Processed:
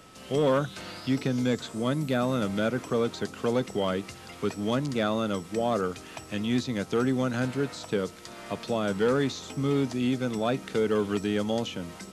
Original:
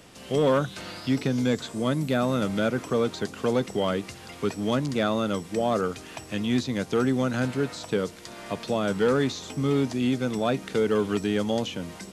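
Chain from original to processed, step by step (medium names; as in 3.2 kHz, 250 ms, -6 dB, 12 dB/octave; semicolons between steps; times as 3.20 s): whistle 1.3 kHz -53 dBFS; trim -2 dB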